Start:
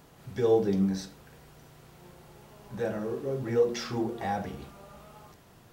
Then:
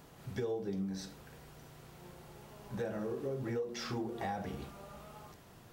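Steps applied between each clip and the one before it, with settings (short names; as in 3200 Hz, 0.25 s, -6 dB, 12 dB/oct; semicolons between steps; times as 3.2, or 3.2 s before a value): compressor 8:1, threshold -33 dBFS, peak gain reduction 14.5 dB; gain -1 dB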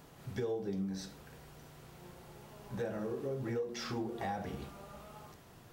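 flange 0.35 Hz, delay 6.6 ms, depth 7.2 ms, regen -86%; gain +4.5 dB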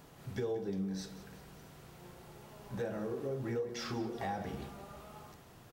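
feedback echo 0.182 s, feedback 54%, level -15.5 dB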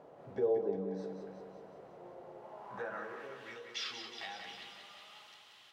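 band-pass sweep 570 Hz -> 3200 Hz, 2.35–3.48; thinning echo 0.183 s, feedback 65%, high-pass 170 Hz, level -7.5 dB; gain +9.5 dB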